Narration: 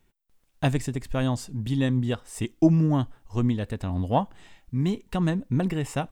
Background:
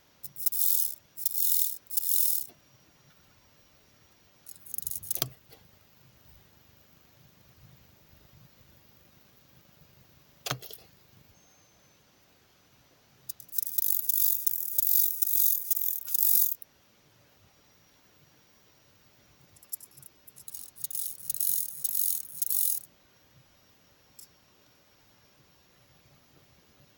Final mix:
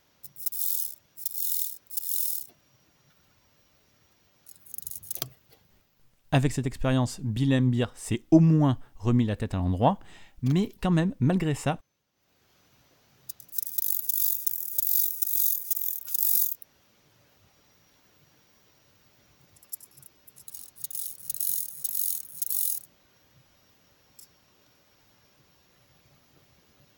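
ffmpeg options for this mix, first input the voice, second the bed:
-filter_complex "[0:a]adelay=5700,volume=1.12[s0];[1:a]volume=3.76,afade=t=out:st=5.4:d=0.82:silence=0.251189,afade=t=in:st=12.13:d=0.44:silence=0.188365[s1];[s0][s1]amix=inputs=2:normalize=0"

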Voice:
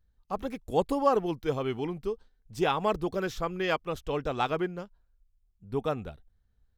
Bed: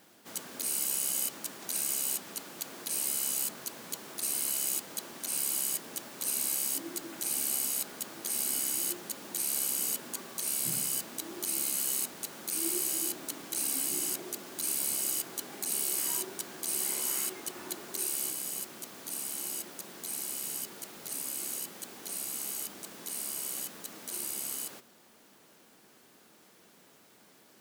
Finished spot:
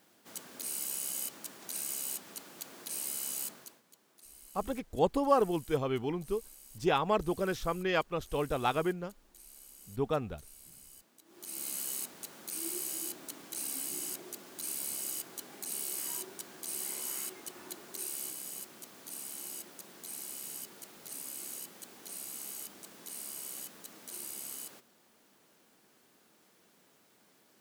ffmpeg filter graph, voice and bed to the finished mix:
-filter_complex "[0:a]adelay=4250,volume=0.841[s0];[1:a]volume=3.76,afade=t=out:st=3.46:d=0.36:silence=0.133352,afade=t=in:st=11.25:d=0.46:silence=0.141254[s1];[s0][s1]amix=inputs=2:normalize=0"

